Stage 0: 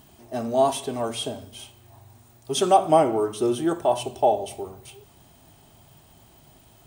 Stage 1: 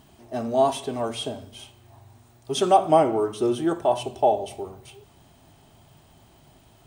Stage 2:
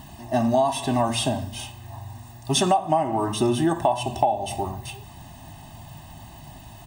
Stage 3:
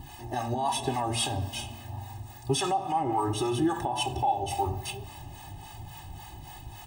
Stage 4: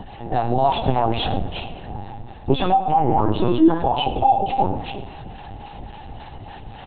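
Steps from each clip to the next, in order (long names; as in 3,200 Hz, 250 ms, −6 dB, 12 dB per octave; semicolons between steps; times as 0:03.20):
high-shelf EQ 8,400 Hz −9 dB
comb filter 1.1 ms, depth 91%; downward compressor 12 to 1, threshold −25 dBFS, peak gain reduction 17.5 dB; level +8 dB
brickwall limiter −17.5 dBFS, peak gain reduction 10.5 dB; two-band tremolo in antiphase 3.6 Hz, depth 70%, crossover 630 Hz; convolution reverb RT60 2.8 s, pre-delay 5 ms, DRR 17 dB
hollow resonant body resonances 270/660 Hz, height 9 dB, ringing for 20 ms; linear-prediction vocoder at 8 kHz pitch kept; single-tap delay 109 ms −17.5 dB; level +5.5 dB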